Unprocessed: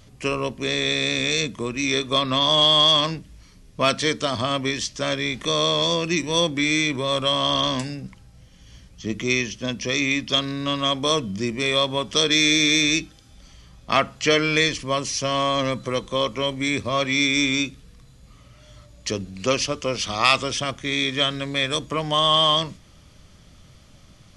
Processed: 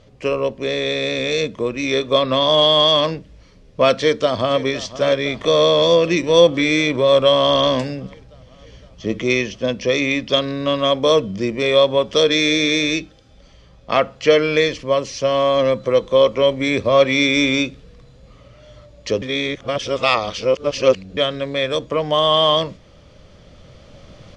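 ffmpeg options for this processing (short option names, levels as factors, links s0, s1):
-filter_complex "[0:a]asplit=2[s0][s1];[s1]afade=t=in:st=3.92:d=0.01,afade=t=out:st=4.66:d=0.01,aecho=0:1:510|1020|1530|2040|2550|3060|3570|4080|4590|5100:0.158489|0.118867|0.0891502|0.0668627|0.050147|0.0376103|0.0282077|0.0211558|0.0158668|0.0119001[s2];[s0][s2]amix=inputs=2:normalize=0,asplit=3[s3][s4][s5];[s3]atrim=end=19.222[s6];[s4]atrim=start=19.218:end=21.172,asetpts=PTS-STARTPTS,areverse[s7];[s5]atrim=start=21.168[s8];[s6][s7]acrossfade=d=0.004:c1=hsin:c2=hsin[s9];[s9][s8]acrossfade=d=0.004:c1=hsin:c2=hsin,lowpass=4800,equalizer=f=520:w=1.9:g=11,dynaudnorm=f=280:g=11:m=3.76,volume=0.891"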